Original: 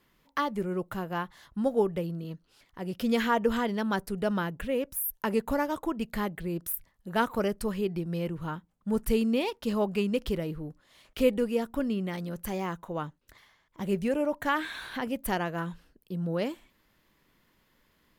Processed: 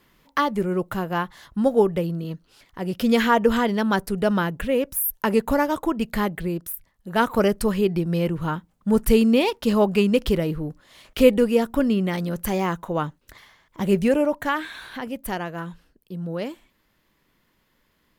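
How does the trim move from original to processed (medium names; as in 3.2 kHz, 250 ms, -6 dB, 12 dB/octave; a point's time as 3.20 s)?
6.46 s +7.5 dB
6.76 s -0.5 dB
7.39 s +9 dB
14.12 s +9 dB
14.69 s +1 dB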